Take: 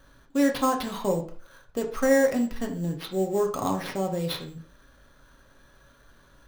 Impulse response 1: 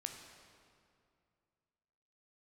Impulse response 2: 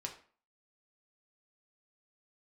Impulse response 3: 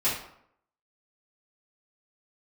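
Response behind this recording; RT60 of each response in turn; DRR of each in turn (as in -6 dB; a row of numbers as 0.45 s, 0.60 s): 2; 2.4 s, 0.45 s, 0.70 s; 4.0 dB, 1.5 dB, -11.5 dB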